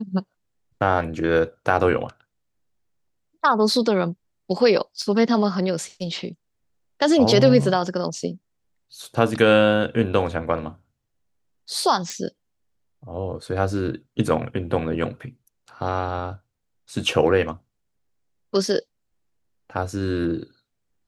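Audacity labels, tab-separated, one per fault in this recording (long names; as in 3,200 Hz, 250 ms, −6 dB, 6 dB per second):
5.020000	5.020000	drop-out 2.8 ms
12.100000	12.100000	click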